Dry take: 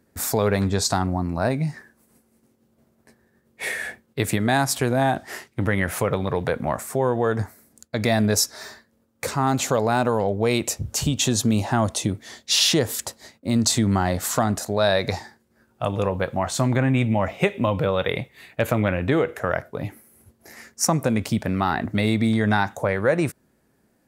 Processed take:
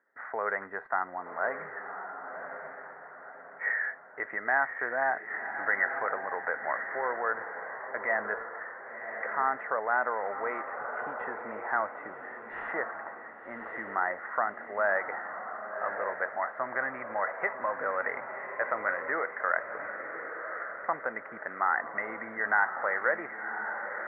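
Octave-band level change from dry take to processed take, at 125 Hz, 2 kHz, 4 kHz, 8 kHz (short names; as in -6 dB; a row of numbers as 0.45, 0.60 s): under -35 dB, 0.0 dB, under -40 dB, under -40 dB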